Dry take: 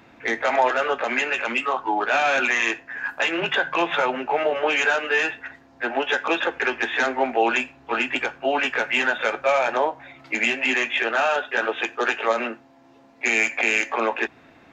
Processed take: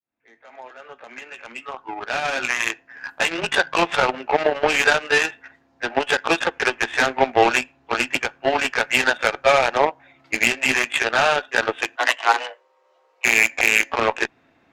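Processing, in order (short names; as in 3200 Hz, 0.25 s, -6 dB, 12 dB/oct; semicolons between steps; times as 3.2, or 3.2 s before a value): opening faded in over 3.40 s; added harmonics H 7 -19 dB, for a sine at -6.5 dBFS; 11.96–13.25 frequency shift +250 Hz; gain +5 dB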